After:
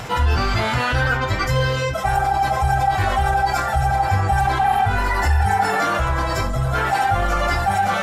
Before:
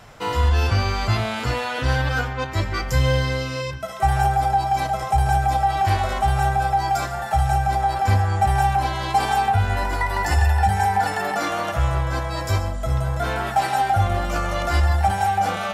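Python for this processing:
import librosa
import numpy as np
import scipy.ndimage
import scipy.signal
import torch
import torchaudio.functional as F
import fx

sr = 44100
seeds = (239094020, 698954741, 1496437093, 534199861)

y = fx.spec_repair(x, sr, seeds[0], start_s=9.03, length_s=0.41, low_hz=210.0, high_hz=9300.0, source='after')
y = fx.dynamic_eq(y, sr, hz=1400.0, q=1.0, threshold_db=-32.0, ratio=4.0, max_db=4)
y = fx.stretch_vocoder_free(y, sr, factor=0.51)
y = fx.doubler(y, sr, ms=25.0, db=-10.5)
y = fx.env_flatten(y, sr, amount_pct=50)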